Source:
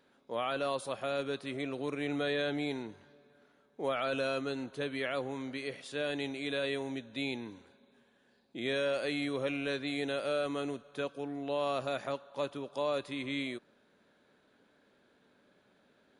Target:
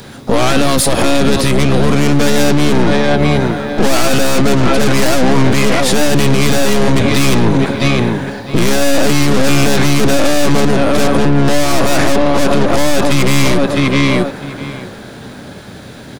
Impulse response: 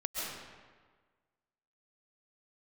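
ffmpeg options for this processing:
-filter_complex "[0:a]acrossover=split=340|2100[s0][s1][s2];[s1]dynaudnorm=f=220:g=21:m=4.73[s3];[s0][s3][s2]amix=inputs=3:normalize=0,aecho=1:1:653|1306:0.158|0.0238,aeval=exprs='(tanh(63.1*val(0)+0.5)-tanh(0.5))/63.1':c=same,asplit=4[s4][s5][s6][s7];[s5]asetrate=22050,aresample=44100,atempo=2,volume=0.631[s8];[s6]asetrate=55563,aresample=44100,atempo=0.793701,volume=0.251[s9];[s7]asetrate=66075,aresample=44100,atempo=0.66742,volume=0.126[s10];[s4][s8][s9][s10]amix=inputs=4:normalize=0,bass=f=250:g=8,treble=f=4000:g=10,alimiter=level_in=47.3:limit=0.891:release=50:level=0:latency=1,volume=0.891"

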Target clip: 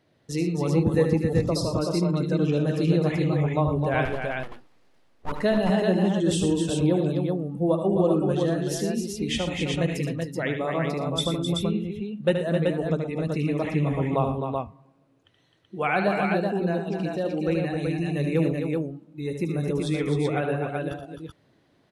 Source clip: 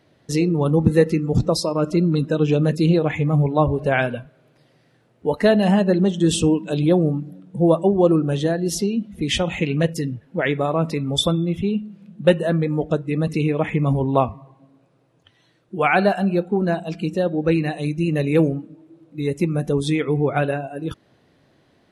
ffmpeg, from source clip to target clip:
-filter_complex "[0:a]asettb=1/sr,asplit=3[s0][s1][s2];[s0]atrim=end=4.054[s3];[s1]atrim=start=4.05:end=5.32,asetpts=PTS-STARTPTS,afade=t=in:d=0.004:c=qsin,afade=t=out:st=1.266:d=0.004:c=qsin,aeval=exprs='abs(val(0))':c=same[s4];[s2]atrim=start=5.316[s5];[s3][s4]acrossfade=d=0.004:c1=hsin:c2=qsin[s6];[s6][s5]acrossfade=d=0.004:c1=qsin:c2=hsin,aecho=1:1:75|116|260|277|380:0.422|0.237|0.447|0.119|0.631,volume=0.422"

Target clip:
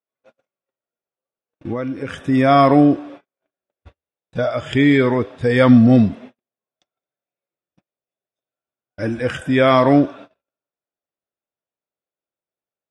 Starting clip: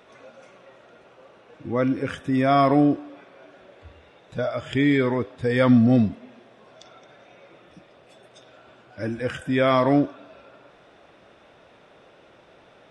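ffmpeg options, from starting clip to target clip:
-filter_complex "[0:a]agate=range=0.00355:threshold=0.00794:ratio=16:detection=peak,asettb=1/sr,asplit=3[s0][s1][s2];[s0]atrim=end=1.724[s3];[s1]atrim=start=1.72:end=2.22,asetpts=PTS-STARTPTS,afade=t=in:d=0.004:c=qsin,afade=t=out:st=0.496:d=0.004:c=qsin,acompressor=threshold=0.0398:ratio=6[s4];[s2]atrim=start=2.216[s5];[s3][s4]acrossfade=d=0.004:c1=hsin:c2=qsin[s6];[s6][s5]acrossfade=d=0.004:c1=qsin:c2=hsin,volume=2"

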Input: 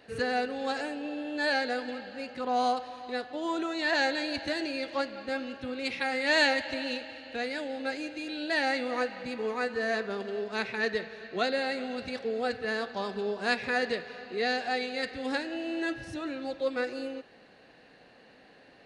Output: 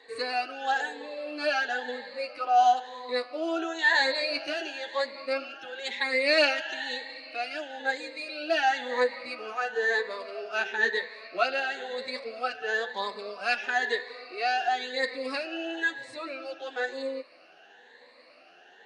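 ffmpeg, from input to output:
-af "afftfilt=real='re*pow(10,14/40*sin(2*PI*(1*log(max(b,1)*sr/1024/100)/log(2)-(1)*(pts-256)/sr)))':imag='im*pow(10,14/40*sin(2*PI*(1*log(max(b,1)*sr/1024/100)/log(2)-(1)*(pts-256)/sr)))':win_size=1024:overlap=0.75,flanger=delay=2.6:depth=9.8:regen=0:speed=0.14:shape=sinusoidal,highpass=500,lowpass=8000,volume=1.58"

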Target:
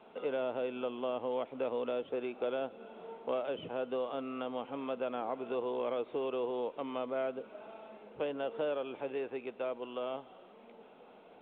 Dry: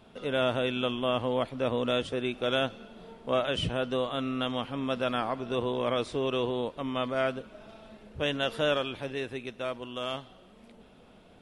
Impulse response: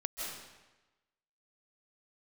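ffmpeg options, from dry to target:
-filter_complex "[0:a]acrossover=split=670|1500[s0][s1][s2];[s0]acompressor=threshold=0.02:ratio=4[s3];[s1]acompressor=threshold=0.00398:ratio=4[s4];[s2]acompressor=threshold=0.00447:ratio=4[s5];[s3][s4][s5]amix=inputs=3:normalize=0,highpass=320,equalizer=f=460:t=q:w=4:g=4,equalizer=f=840:t=q:w=4:g=5,equalizer=f=1800:t=q:w=4:g=-7,lowpass=f=2800:w=0.5412,lowpass=f=2800:w=1.3066" -ar 8000 -c:a pcm_alaw

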